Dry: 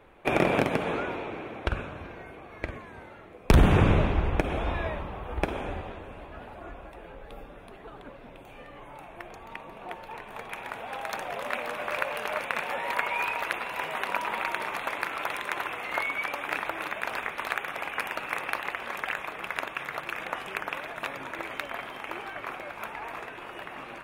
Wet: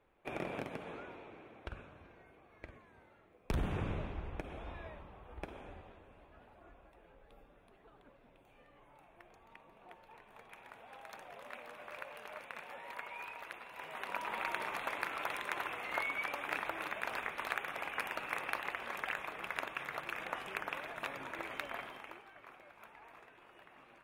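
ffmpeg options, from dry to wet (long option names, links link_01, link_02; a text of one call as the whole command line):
ffmpeg -i in.wav -af "volume=-7dB,afade=type=in:start_time=13.72:duration=0.8:silence=0.316228,afade=type=out:start_time=21.78:duration=0.44:silence=0.251189" out.wav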